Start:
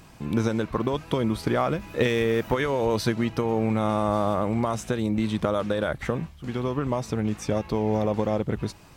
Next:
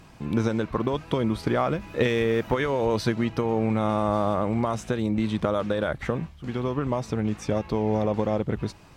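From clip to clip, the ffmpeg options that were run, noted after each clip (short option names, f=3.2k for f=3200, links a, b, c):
-af "highshelf=f=8.1k:g=-9"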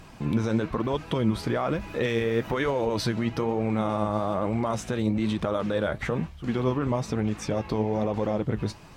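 -af "alimiter=limit=-20dB:level=0:latency=1:release=52,flanger=delay=1.1:depth=9.8:regen=63:speed=1.1:shape=triangular,volume=7dB"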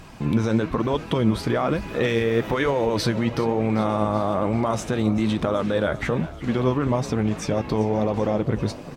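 -filter_complex "[0:a]asplit=7[a][b][c][d][e][f][g];[b]adelay=388,afreqshift=35,volume=-17dB[h];[c]adelay=776,afreqshift=70,volume=-21.6dB[i];[d]adelay=1164,afreqshift=105,volume=-26.2dB[j];[e]adelay=1552,afreqshift=140,volume=-30.7dB[k];[f]adelay=1940,afreqshift=175,volume=-35.3dB[l];[g]adelay=2328,afreqshift=210,volume=-39.9dB[m];[a][h][i][j][k][l][m]amix=inputs=7:normalize=0,volume=4dB"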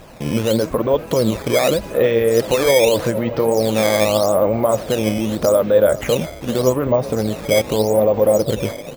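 -filter_complex "[0:a]equalizer=f=550:w=2.2:g=13,acrossover=split=6300[a][b];[b]acompressor=threshold=-59dB:ratio=4:attack=1:release=60[c];[a][c]amix=inputs=2:normalize=0,acrusher=samples=9:mix=1:aa=0.000001:lfo=1:lforange=14.4:lforate=0.83"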